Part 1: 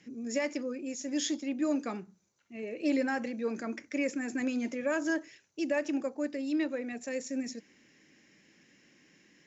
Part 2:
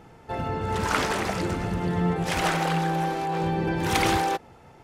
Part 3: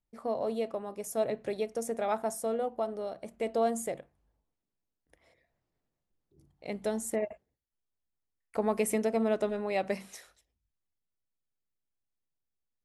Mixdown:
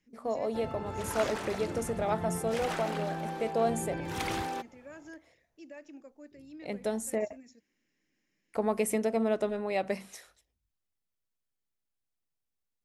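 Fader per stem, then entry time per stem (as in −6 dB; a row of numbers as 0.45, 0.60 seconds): −17.5, −11.0, 0.0 decibels; 0.00, 0.25, 0.00 seconds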